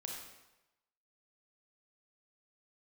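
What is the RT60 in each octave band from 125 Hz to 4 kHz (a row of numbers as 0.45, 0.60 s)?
0.95, 0.85, 1.0, 1.0, 0.90, 0.85 s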